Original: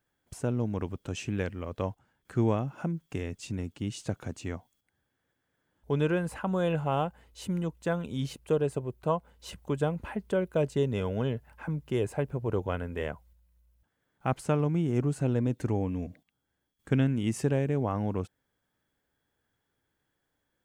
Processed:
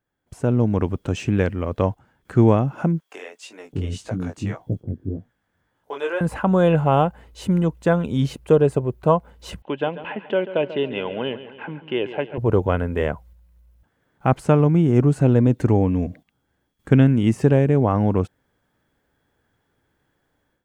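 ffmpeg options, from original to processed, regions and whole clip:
ffmpeg -i in.wav -filter_complex "[0:a]asettb=1/sr,asplit=3[link_01][link_02][link_03];[link_01]atrim=end=3.004[link_04];[link_02]atrim=start=3:end=6.21,asetpts=PTS-STARTPTS,afade=type=in:duration=0.004:curve=qsin,afade=type=out:start_time=3.206:duration=0.004:curve=qsin,flanger=delay=17:depth=5:speed=1.8,acrossover=split=460[link_05][link_06];[link_05]adelay=610[link_07];[link_07][link_06]amix=inputs=2:normalize=0,atrim=end_sample=141561[link_08];[link_03]atrim=start=6.206[link_09];[link_04][link_08]acrossfade=duration=0.004:curve1=hsin:curve2=qsin[link_10];[link_10][link_09]acrossfade=duration=0.004:curve1=qsin:curve2=hsin,asettb=1/sr,asplit=3[link_11][link_12][link_13];[link_11]atrim=end=9.624[link_14];[link_12]atrim=start=9.62:end=12.38,asetpts=PTS-STARTPTS,afade=type=in:duration=0.004:curve=qsin,afade=type=out:start_time=2.756:duration=0.004:curve=qsin,highpass=390,equalizer=frequency=450:width_type=q:width=4:gain=-6,equalizer=frequency=670:width_type=q:width=4:gain=-4,equalizer=frequency=1200:width_type=q:width=4:gain=-8,equalizer=frequency=2900:width_type=q:width=4:gain=10,lowpass=frequency=3400:width=0.5412,lowpass=frequency=3400:width=1.3066,aecho=1:1:140|280|420|560|700:0.211|0.11|0.0571|0.0297|0.0155,atrim=end_sample=121716[link_15];[link_13]atrim=start=12.376[link_16];[link_14][link_15]acrossfade=duration=0.004:curve1=hsin:curve2=qsin[link_17];[link_17][link_16]acrossfade=duration=0.004:curve1=qsin:curve2=hsin,deesser=0.95,highshelf=frequency=2600:gain=-8,dynaudnorm=framelen=270:gausssize=3:maxgain=12dB" out.wav

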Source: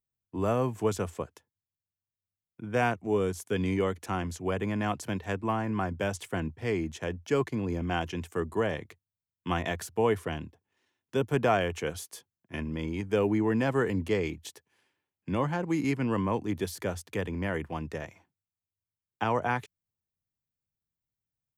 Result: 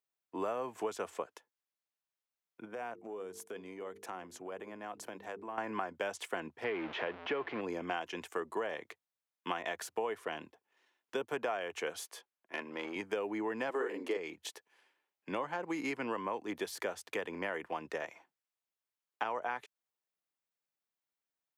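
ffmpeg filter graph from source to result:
ffmpeg -i in.wav -filter_complex "[0:a]asettb=1/sr,asplit=3[link_01][link_02][link_03];[link_01]atrim=end=2.654[link_04];[link_02]atrim=start=2.65:end=5.58,asetpts=PTS-STARTPTS,afade=type=in:duration=0.004:curve=qsin,afade=type=out:start_time=2.926:duration=0.004:curve=qsin,equalizer=frequency=3000:width=0.34:gain=-7,bandreject=frequency=50:width_type=h:width=6,bandreject=frequency=100:width_type=h:width=6,bandreject=frequency=150:width_type=h:width=6,bandreject=frequency=200:width_type=h:width=6,bandreject=frequency=250:width_type=h:width=6,bandreject=frequency=300:width_type=h:width=6,bandreject=frequency=350:width_type=h:width=6,bandreject=frequency=400:width_type=h:width=6,bandreject=frequency=450:width_type=h:width=6,acompressor=threshold=-38dB:ratio=8:attack=3.2:release=140:knee=1:detection=peak[link_05];[link_03]atrim=start=5.576[link_06];[link_04][link_05]acrossfade=duration=0.004:curve1=hsin:curve2=qsin[link_07];[link_07][link_06]acrossfade=duration=0.004:curve1=qsin:curve2=hsin,asettb=1/sr,asplit=3[link_08][link_09][link_10];[link_08]atrim=end=6.644[link_11];[link_09]atrim=start=6.64:end=7.61,asetpts=PTS-STARTPTS,afade=type=in:duration=0.004:curve=qsin,afade=type=out:start_time=0.966:duration=0.004:curve=qsin,aeval=exprs='val(0)+0.5*0.0211*sgn(val(0))':channel_layout=same,lowpass=frequency=3200:width=0.5412,lowpass=frequency=3200:width=1.3066[link_12];[link_10]atrim=start=7.606[link_13];[link_11][link_12]acrossfade=duration=0.004:curve1=hsin:curve2=qsin[link_14];[link_14][link_13]acrossfade=duration=0.004:curve1=qsin:curve2=hsin,asettb=1/sr,asplit=3[link_15][link_16][link_17];[link_15]atrim=end=12.074[link_18];[link_16]atrim=start=12.07:end=12.96,asetpts=PTS-STARTPTS,afade=type=in:duration=0.004:curve=qsin,afade=type=out:start_time=0.886:duration=0.004:curve=qsin,highpass=frequency=150:poles=1,asoftclip=type=hard:threshold=-28.5dB,bass=frequency=250:gain=-7,treble=frequency=4000:gain=-5[link_19];[link_17]atrim=start=12.956[link_20];[link_18][link_19]acrossfade=duration=0.004:curve1=hsin:curve2=qsin[link_21];[link_21][link_20]acrossfade=duration=0.004:curve1=qsin:curve2=hsin,asettb=1/sr,asplit=3[link_22][link_23][link_24];[link_22]atrim=end=13.704[link_25];[link_23]atrim=start=13.7:end=14.17,asetpts=PTS-STARTPTS,afade=type=in:duration=0.004:curve=qsin,afade=type=out:start_time=0.466:duration=0.004:curve=qsin,highpass=frequency=340:width_type=q:width=1.9,asplit=2[link_26][link_27];[link_27]adelay=45,volume=-3dB[link_28];[link_26][link_28]amix=inputs=2:normalize=0,atrim=end_sample=20727[link_29];[link_24]atrim=start=14.166[link_30];[link_25][link_29]acrossfade=duration=0.004:curve1=hsin:curve2=qsin[link_31];[link_31][link_30]acrossfade=duration=0.004:curve1=qsin:curve2=hsin,highpass=490,highshelf=frequency=4500:gain=-8,acompressor=threshold=-37dB:ratio=6,volume=4dB" out.wav

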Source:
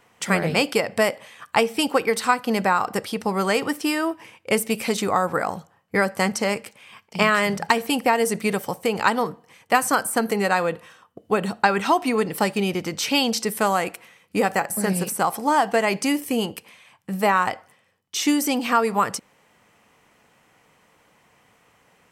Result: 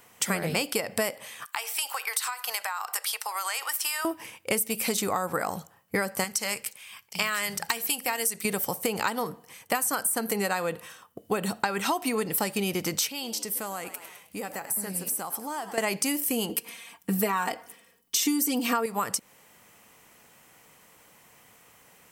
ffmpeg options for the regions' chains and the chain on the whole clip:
ffmpeg -i in.wav -filter_complex "[0:a]asettb=1/sr,asplit=3[link_01][link_02][link_03];[link_01]atrim=end=1.464[link_04];[link_02]atrim=start=1.46:end=4.05,asetpts=PTS-STARTPTS,afade=type=in:duration=0.004:curve=qsin,afade=type=out:start_time=2.586:duration=0.004:curve=qsin,highpass=frequency=830:width=0.5412,highpass=frequency=830:width=1.3066,acompressor=threshold=-27dB:ratio=10:attack=3.2:release=140:knee=1:detection=peak[link_05];[link_03]atrim=start=4.046[link_06];[link_04][link_05]acrossfade=duration=0.004:curve1=hsin:curve2=qsin[link_07];[link_07][link_06]acrossfade=duration=0.004:curve1=qsin:curve2=hsin,asettb=1/sr,asplit=3[link_08][link_09][link_10];[link_08]atrim=end=6.244[link_11];[link_09]atrim=start=6.24:end=8.45,asetpts=PTS-STARTPTS,afade=type=in:duration=0.004:curve=qsin,afade=type=out:start_time=2.206:duration=0.004:curve=qsin,equalizer=frequency=300:width=0.35:gain=-11.5,bandreject=frequency=130.4:width_type=h:width=4,bandreject=frequency=260.8:width_type=h:width=4,bandreject=frequency=391.2:width_type=h:width=4,bandreject=frequency=521.6:width_type=h:width=4[link_12];[link_10]atrim=start=8.446[link_13];[link_11][link_12]acrossfade=duration=0.004:curve1=hsin:curve2=qsin[link_14];[link_14][link_13]acrossfade=duration=0.004:curve1=qsin:curve2=hsin,asettb=1/sr,asplit=3[link_15][link_16][link_17];[link_15]atrim=end=13.074[link_18];[link_16]atrim=start=13.07:end=15.78,asetpts=PTS-STARTPTS,afade=type=in:duration=0.004:curve=qsin,afade=type=out:start_time=2.706:duration=0.004:curve=qsin,asplit=5[link_19][link_20][link_21][link_22][link_23];[link_20]adelay=104,afreqshift=73,volume=-17dB[link_24];[link_21]adelay=208,afreqshift=146,volume=-24.3dB[link_25];[link_22]adelay=312,afreqshift=219,volume=-31.7dB[link_26];[link_23]adelay=416,afreqshift=292,volume=-39dB[link_27];[link_19][link_24][link_25][link_26][link_27]amix=inputs=5:normalize=0,atrim=end_sample=119511,acompressor=threshold=-44dB:ratio=2:attack=3.2:release=140:knee=1:detection=peak[link_28];[link_17]atrim=start=15.776[link_29];[link_18][link_28]acrossfade=duration=0.004:curve1=hsin:curve2=qsin[link_30];[link_30][link_29]acrossfade=duration=0.004:curve1=qsin:curve2=hsin,asettb=1/sr,asplit=3[link_31][link_32][link_33];[link_31]atrim=end=16.494[link_34];[link_32]atrim=start=16.49:end=18.86,asetpts=PTS-STARTPTS,afade=type=in:duration=0.004:curve=qsin,afade=type=out:start_time=2.366:duration=0.004:curve=qsin,equalizer=frequency=340:width=4.4:gain=13.5,aecho=1:1:4.3:0.97,atrim=end_sample=104517[link_35];[link_33]atrim=start=18.856[link_36];[link_34][link_35]acrossfade=duration=0.004:curve1=hsin:curve2=qsin[link_37];[link_37][link_36]acrossfade=duration=0.004:curve1=qsin:curve2=hsin,aemphasis=mode=production:type=50fm,acompressor=threshold=-24dB:ratio=6" out.wav

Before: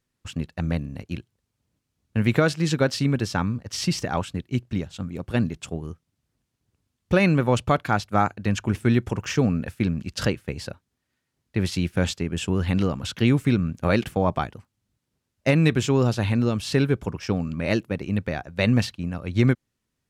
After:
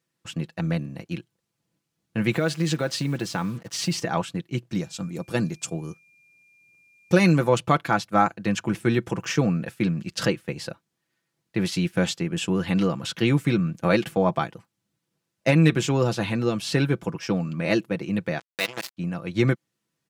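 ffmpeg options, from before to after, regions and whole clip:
ffmpeg -i in.wav -filter_complex "[0:a]asettb=1/sr,asplit=3[link_01][link_02][link_03];[link_01]atrim=end=2.334[link_04];[link_02]atrim=start=2.33:end=3.97,asetpts=PTS-STARTPTS,afade=type=in:duration=0.004:curve=qsin,afade=type=out:start_time=1.636:duration=0.004:curve=qsin,bandreject=frequency=5400:width=16,acompressor=threshold=-21dB:ratio=4:attack=3.2:release=140:knee=1:detection=peak,acrusher=bits=7:mix=0:aa=0.5[link_05];[link_03]atrim=start=3.966[link_06];[link_04][link_05]acrossfade=duration=0.004:curve1=hsin:curve2=qsin[link_07];[link_07][link_06]acrossfade=duration=0.004:curve1=qsin:curve2=hsin,asettb=1/sr,asplit=3[link_08][link_09][link_10];[link_08]atrim=end=4.714[link_11];[link_09]atrim=start=4.71:end=7.49,asetpts=PTS-STARTPTS,afade=type=in:duration=0.004:curve=qsin,afade=type=out:start_time=2.776:duration=0.004:curve=qsin,highshelf=frequency=4100:width_type=q:width=1.5:gain=6.5,aeval=exprs='val(0)+0.002*sin(2*PI*2400*n/s)':channel_layout=same[link_12];[link_10]atrim=start=7.486[link_13];[link_11][link_12]acrossfade=duration=0.004:curve1=hsin:curve2=qsin[link_14];[link_14][link_13]acrossfade=duration=0.004:curve1=qsin:curve2=hsin,asettb=1/sr,asplit=3[link_15][link_16][link_17];[link_15]atrim=end=18.394[link_18];[link_16]atrim=start=18.39:end=18.97,asetpts=PTS-STARTPTS,afade=type=in:duration=0.004:curve=qsin,afade=type=out:start_time=0.576:duration=0.004:curve=qsin,highpass=frequency=960:poles=1,acrusher=bits=3:mix=0:aa=0.5[link_19];[link_17]atrim=start=18.966[link_20];[link_18][link_19]acrossfade=duration=0.004:curve1=hsin:curve2=qsin[link_21];[link_21][link_20]acrossfade=duration=0.004:curve1=qsin:curve2=hsin,highpass=140,aecho=1:1:6:0.54" out.wav

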